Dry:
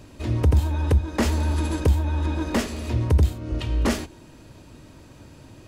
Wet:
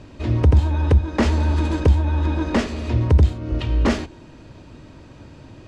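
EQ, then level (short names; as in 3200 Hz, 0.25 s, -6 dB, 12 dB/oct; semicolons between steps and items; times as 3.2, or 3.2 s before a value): air absorption 100 m; +4.0 dB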